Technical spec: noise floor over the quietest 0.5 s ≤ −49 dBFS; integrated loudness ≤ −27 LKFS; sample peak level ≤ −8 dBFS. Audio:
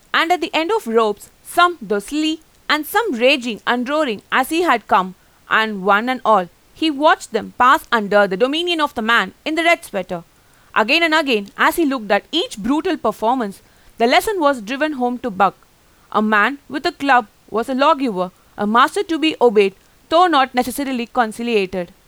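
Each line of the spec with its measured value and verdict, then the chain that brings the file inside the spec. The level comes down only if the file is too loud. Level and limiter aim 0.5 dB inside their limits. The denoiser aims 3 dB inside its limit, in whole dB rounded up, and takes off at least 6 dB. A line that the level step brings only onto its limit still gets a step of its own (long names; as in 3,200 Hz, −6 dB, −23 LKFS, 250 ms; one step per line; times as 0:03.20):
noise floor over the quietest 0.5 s −52 dBFS: in spec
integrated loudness −17.0 LKFS: out of spec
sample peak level −2.5 dBFS: out of spec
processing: level −10.5 dB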